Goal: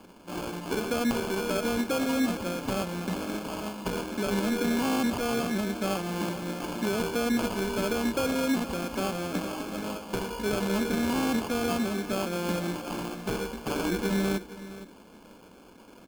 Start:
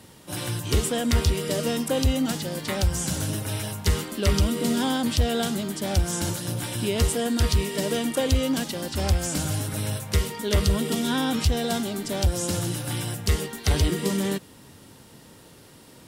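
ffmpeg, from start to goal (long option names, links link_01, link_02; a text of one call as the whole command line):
ffmpeg -i in.wav -filter_complex "[0:a]afftfilt=real='re*between(b*sr/4096,170,3800)':imag='im*between(b*sr/4096,170,3800)':win_size=4096:overlap=0.75,alimiter=limit=-18.5dB:level=0:latency=1:release=44,acrusher=samples=23:mix=1:aa=0.000001,asplit=2[link_01][link_02];[link_02]aecho=0:1:466:0.178[link_03];[link_01][link_03]amix=inputs=2:normalize=0" out.wav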